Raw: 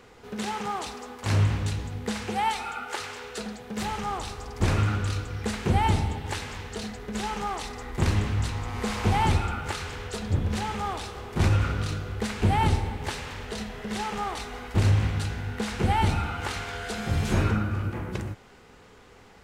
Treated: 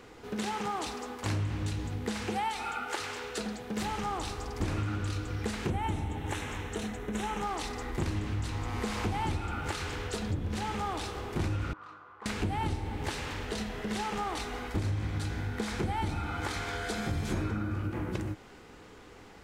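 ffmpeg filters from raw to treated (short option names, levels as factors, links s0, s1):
-filter_complex "[0:a]asettb=1/sr,asplit=3[s0][s1][s2];[s0]atrim=end=5.704[s3];[s1]atrim=start=5.7:end=7.43,asetpts=PTS-STARTPTS,afade=t=in:d=0.004:c=qsin,afade=t=out:st=1.726:d=0.004:c=qsin,equalizer=f=4700:w=4.1:g=-14.5[s4];[s2]atrim=start=7.426[s5];[s3][s4]acrossfade=d=0.004:c1=hsin:c2=qsin[s6];[s6][s5]acrossfade=d=0.004:c1=qsin:c2=hsin,asettb=1/sr,asplit=3[s7][s8][s9];[s7]atrim=end=11.734[s10];[s8]atrim=start=11.73:end=12.26,asetpts=PTS-STARTPTS,afade=t=in:d=0.004:c=qsin,afade=t=out:st=0.526:d=0.004:c=qsin,bandpass=f=1100:t=q:w=5.4[s11];[s9]atrim=start=12.256[s12];[s10][s11]acrossfade=d=0.004:c1=hsin:c2=qsin[s13];[s13][s12]acrossfade=d=0.004:c1=qsin:c2=hsin,asettb=1/sr,asplit=3[s14][s15][s16];[s14]atrim=end=14.704[s17];[s15]atrim=start=14.7:end=17.77,asetpts=PTS-STARTPTS,afade=t=in:d=0.004:c=qsin,afade=t=out:st=3.066:d=0.004:c=qsin,bandreject=f=2800:w=12[s18];[s16]atrim=start=17.766[s19];[s17][s18]acrossfade=d=0.004:c1=hsin:c2=qsin[s20];[s20][s19]acrossfade=d=0.004:c1=qsin:c2=hsin,equalizer=f=310:t=o:w=0.24:g=9,acompressor=threshold=0.0316:ratio=4"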